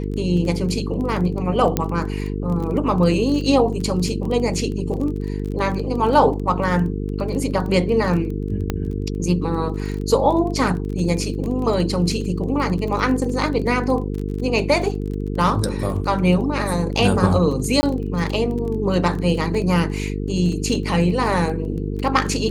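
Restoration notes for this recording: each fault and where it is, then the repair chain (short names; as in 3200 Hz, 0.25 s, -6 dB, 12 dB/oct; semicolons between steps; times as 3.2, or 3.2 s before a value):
buzz 50 Hz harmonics 9 -25 dBFS
crackle 23/s -27 dBFS
1.77 pop -5 dBFS
8.7 pop -9 dBFS
17.81–17.83 gap 20 ms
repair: de-click; de-hum 50 Hz, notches 9; interpolate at 17.81, 20 ms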